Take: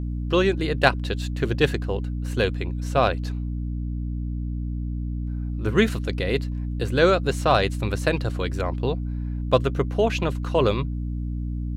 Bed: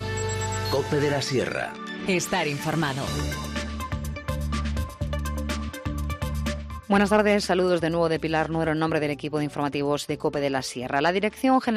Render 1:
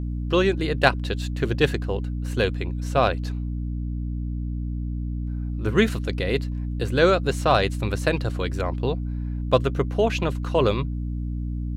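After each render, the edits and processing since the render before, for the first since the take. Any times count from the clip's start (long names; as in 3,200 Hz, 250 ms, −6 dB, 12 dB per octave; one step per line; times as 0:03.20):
no processing that can be heard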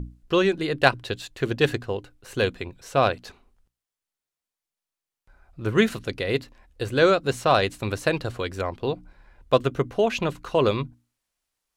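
mains-hum notches 60/120/180/240/300 Hz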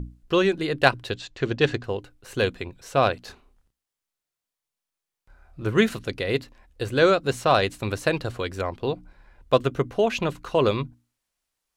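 0:01.14–0:01.84: low-pass filter 6,900 Hz 24 dB per octave
0:03.25–0:05.67: double-tracking delay 29 ms −4.5 dB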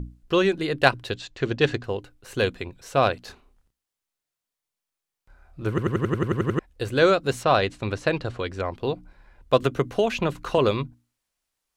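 0:05.69: stutter in place 0.09 s, 10 plays
0:07.43–0:08.71: high-frequency loss of the air 73 metres
0:09.62–0:10.58: multiband upward and downward compressor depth 70%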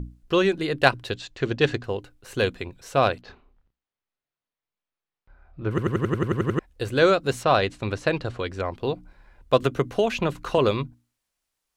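0:03.21–0:05.71: high-frequency loss of the air 230 metres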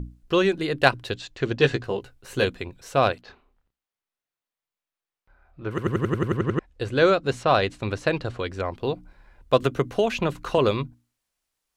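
0:01.58–0:02.45: double-tracking delay 15 ms −5 dB
0:03.12–0:05.85: low-shelf EQ 320 Hz −6.5 dB
0:06.37–0:07.49: high-frequency loss of the air 56 metres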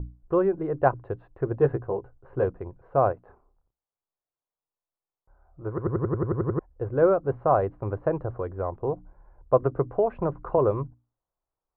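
low-pass filter 1,100 Hz 24 dB per octave
parametric band 230 Hz −10 dB 0.55 octaves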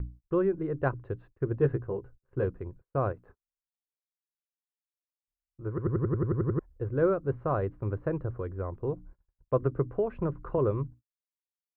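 noise gate −47 dBFS, range −39 dB
parametric band 750 Hz −13 dB 1.1 octaves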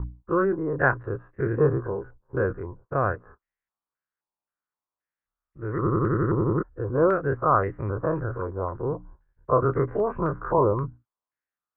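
every bin's largest magnitude spread in time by 60 ms
low-pass on a step sequencer 3.8 Hz 940–1,900 Hz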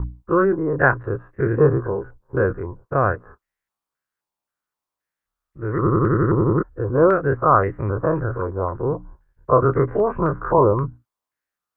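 level +5.5 dB
brickwall limiter −3 dBFS, peak gain reduction 1 dB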